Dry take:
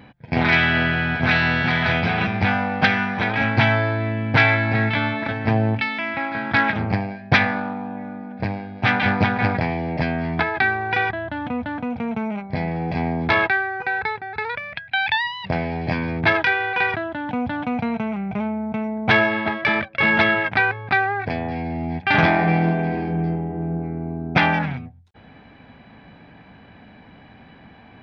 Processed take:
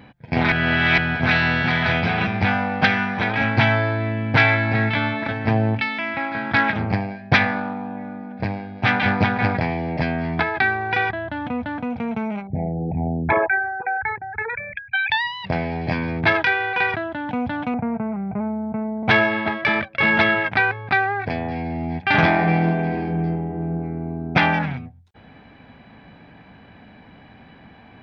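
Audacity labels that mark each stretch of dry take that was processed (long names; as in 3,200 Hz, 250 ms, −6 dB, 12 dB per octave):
0.520000	0.980000	reverse
12.470000	15.100000	spectral envelope exaggerated exponent 3
17.740000	19.030000	Bessel low-pass filter 1,200 Hz, order 8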